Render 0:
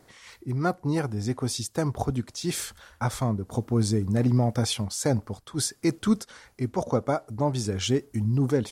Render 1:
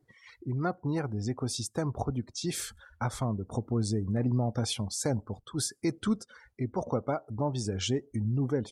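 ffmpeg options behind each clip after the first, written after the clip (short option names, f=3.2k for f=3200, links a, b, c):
-filter_complex "[0:a]asplit=2[a][b];[b]acompressor=threshold=-30dB:ratio=12,volume=3dB[c];[a][c]amix=inputs=2:normalize=0,afftdn=nr=22:nf=-39,volume=-8.5dB"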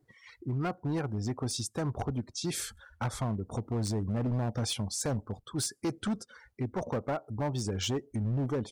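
-af "asoftclip=type=hard:threshold=-26.5dB"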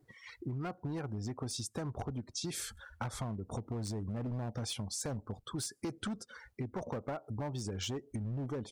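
-af "acompressor=threshold=-38dB:ratio=6,volume=2dB"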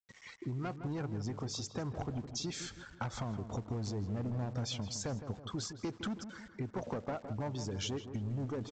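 -filter_complex "[0:a]aresample=16000,aeval=exprs='val(0)*gte(abs(val(0)),0.00168)':c=same,aresample=44100,asplit=2[a][b];[b]adelay=162,lowpass=f=1.9k:p=1,volume=-9.5dB,asplit=2[c][d];[d]adelay=162,lowpass=f=1.9k:p=1,volume=0.52,asplit=2[e][f];[f]adelay=162,lowpass=f=1.9k:p=1,volume=0.52,asplit=2[g][h];[h]adelay=162,lowpass=f=1.9k:p=1,volume=0.52,asplit=2[i][j];[j]adelay=162,lowpass=f=1.9k:p=1,volume=0.52,asplit=2[k][l];[l]adelay=162,lowpass=f=1.9k:p=1,volume=0.52[m];[a][c][e][g][i][k][m]amix=inputs=7:normalize=0"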